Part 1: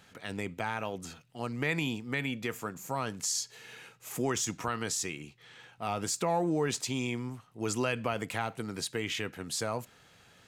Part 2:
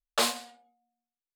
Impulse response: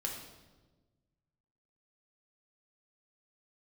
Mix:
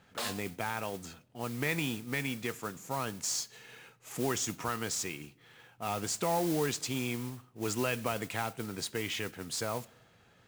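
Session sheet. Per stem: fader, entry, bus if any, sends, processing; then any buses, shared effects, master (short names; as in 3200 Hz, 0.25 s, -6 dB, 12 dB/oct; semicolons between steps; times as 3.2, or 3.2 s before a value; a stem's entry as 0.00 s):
-2.0 dB, 0.00 s, send -21.5 dB, LPF 11000 Hz
+1.0 dB, 0.00 s, no send, limiter -20.5 dBFS, peak gain reduction 7.5 dB; auto duck -13 dB, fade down 0.45 s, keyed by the first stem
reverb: on, RT60 1.3 s, pre-delay 6 ms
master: modulation noise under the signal 12 dB; mismatched tape noise reduction decoder only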